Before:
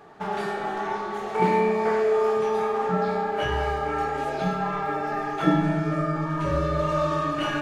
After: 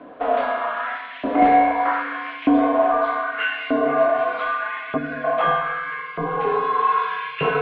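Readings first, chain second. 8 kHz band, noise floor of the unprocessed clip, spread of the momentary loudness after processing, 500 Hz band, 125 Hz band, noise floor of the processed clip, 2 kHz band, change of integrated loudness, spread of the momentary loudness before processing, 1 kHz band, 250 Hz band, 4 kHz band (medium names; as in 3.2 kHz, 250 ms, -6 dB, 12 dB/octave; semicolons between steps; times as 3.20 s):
no reading, -31 dBFS, 10 LU, +2.5 dB, -10.0 dB, -36 dBFS, +7.5 dB, +4.0 dB, 7 LU, +6.5 dB, +3.0 dB, +2.0 dB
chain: LFO high-pass saw up 0.81 Hz 440–2700 Hz; time-frequency box 4.97–5.24 s, 450–1500 Hz -14 dB; mistuned SSB -150 Hz 160–3600 Hz; trim +4.5 dB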